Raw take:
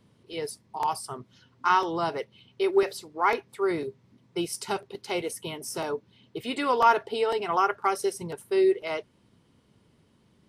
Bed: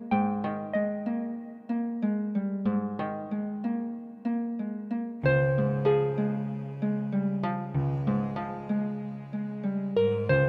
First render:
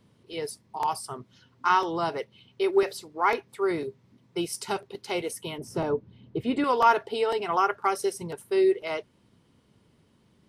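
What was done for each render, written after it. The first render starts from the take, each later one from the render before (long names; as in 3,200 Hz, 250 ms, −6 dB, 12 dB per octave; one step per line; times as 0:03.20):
0:05.58–0:06.64: spectral tilt −3.5 dB per octave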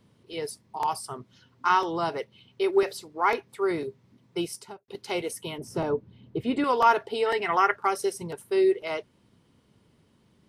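0:04.41–0:04.88: fade out and dull
0:07.26–0:07.76: parametric band 1,900 Hz +15 dB 0.42 octaves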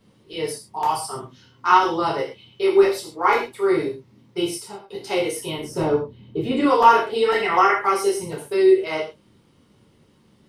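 reverb whose tail is shaped and stops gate 160 ms falling, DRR −5 dB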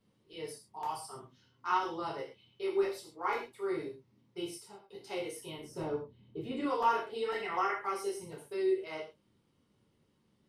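level −15.5 dB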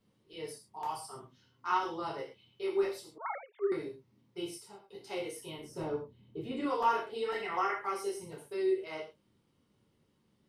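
0:03.18–0:03.72: three sine waves on the formant tracks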